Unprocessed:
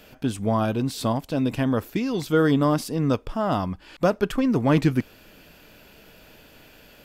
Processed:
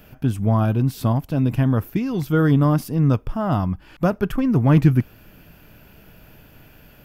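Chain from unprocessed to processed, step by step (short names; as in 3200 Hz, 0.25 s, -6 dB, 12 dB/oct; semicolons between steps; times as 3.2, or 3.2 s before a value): ten-band EQ 125 Hz +4 dB, 250 Hz -4 dB, 500 Hz -8 dB, 1000 Hz -4 dB, 2000 Hz -5 dB, 4000 Hz -11 dB, 8000 Hz -11 dB; gain +7 dB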